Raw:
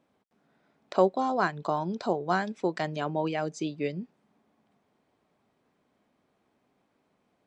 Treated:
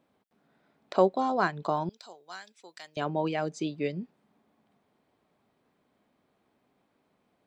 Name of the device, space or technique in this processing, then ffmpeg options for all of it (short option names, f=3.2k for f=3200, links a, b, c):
exciter from parts: -filter_complex "[0:a]asplit=2[a][b];[b]highpass=f=2.8k:w=0.5412,highpass=f=2.8k:w=1.3066,asoftclip=type=tanh:threshold=-33.5dB,highpass=f=4.3k:w=0.5412,highpass=f=4.3k:w=1.3066,volume=-11.5dB[c];[a][c]amix=inputs=2:normalize=0,asettb=1/sr,asplit=3[d][e][f];[d]atrim=end=1.894[g];[e]atrim=start=1.89:end=2.97,asetpts=PTS-STARTPTS,afade=t=in:d=0.004:c=qsin,afade=t=out:st=1.076:d=0.004:c=qsin,aderivative[h];[f]atrim=start=2.966[i];[g][h]acrossfade=d=0.004:c1=hsin:c2=qsin[j];[j][i]acrossfade=d=0.004:c1=qsin:c2=hsin"